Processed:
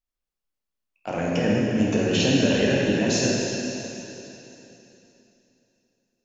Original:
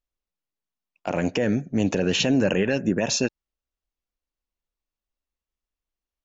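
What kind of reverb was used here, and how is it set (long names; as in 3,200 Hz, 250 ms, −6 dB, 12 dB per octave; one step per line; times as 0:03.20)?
dense smooth reverb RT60 3.2 s, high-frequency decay 1×, pre-delay 0 ms, DRR −5 dB
level −4.5 dB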